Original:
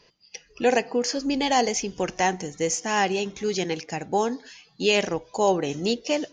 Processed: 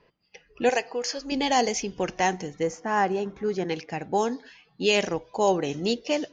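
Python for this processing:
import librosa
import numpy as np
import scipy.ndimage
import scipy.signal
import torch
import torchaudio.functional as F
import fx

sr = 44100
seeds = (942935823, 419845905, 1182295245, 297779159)

y = fx.high_shelf_res(x, sr, hz=2000.0, db=-10.0, q=1.5, at=(2.63, 3.69))
y = fx.env_lowpass(y, sr, base_hz=2000.0, full_db=-16.5)
y = fx.peak_eq(y, sr, hz=210.0, db=-13.5, octaves=1.5, at=(0.69, 1.32))
y = y * 10.0 ** (-1.0 / 20.0)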